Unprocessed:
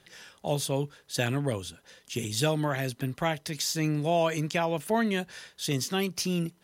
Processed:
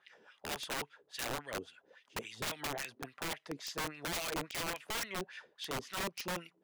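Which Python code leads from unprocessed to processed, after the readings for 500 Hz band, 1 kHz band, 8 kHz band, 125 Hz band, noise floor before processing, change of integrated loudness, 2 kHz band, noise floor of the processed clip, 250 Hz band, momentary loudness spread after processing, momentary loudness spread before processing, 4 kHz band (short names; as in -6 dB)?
-14.0 dB, -8.5 dB, -8.0 dB, -19.5 dB, -63 dBFS, -10.5 dB, -5.5 dB, -74 dBFS, -16.0 dB, 7 LU, 9 LU, -6.5 dB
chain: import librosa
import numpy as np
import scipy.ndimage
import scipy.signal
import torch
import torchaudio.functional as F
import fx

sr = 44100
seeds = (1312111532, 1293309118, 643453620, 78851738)

y = fx.wah_lfo(x, sr, hz=3.6, low_hz=330.0, high_hz=2700.0, q=2.8)
y = (np.mod(10.0 ** (33.0 / 20.0) * y + 1.0, 2.0) - 1.0) / 10.0 ** (33.0 / 20.0)
y = y * librosa.db_to_amplitude(1.5)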